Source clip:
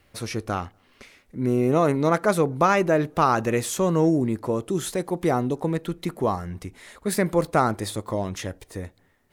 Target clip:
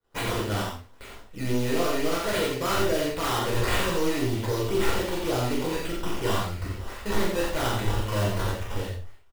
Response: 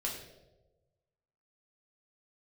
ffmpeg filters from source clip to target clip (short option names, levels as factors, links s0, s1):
-filter_complex "[0:a]aemphasis=mode=production:type=50fm,acrusher=samples=14:mix=1:aa=0.000001:lfo=1:lforange=14:lforate=3.7,asubboost=boost=5.5:cutoff=71,acompressor=threshold=0.0631:ratio=2,volume=16.8,asoftclip=hard,volume=0.0596,aecho=1:1:41|88:0.668|0.631,agate=range=0.0224:threshold=0.00631:ratio=3:detection=peak[s0];[1:a]atrim=start_sample=2205,atrim=end_sample=4410[s1];[s0][s1]afir=irnorm=-1:irlink=0,volume=0.841"